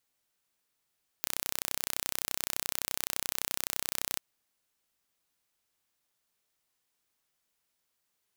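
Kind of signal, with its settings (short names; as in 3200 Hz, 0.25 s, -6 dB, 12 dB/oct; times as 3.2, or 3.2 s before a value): pulse train 31.7/s, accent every 0, -4 dBFS 2.94 s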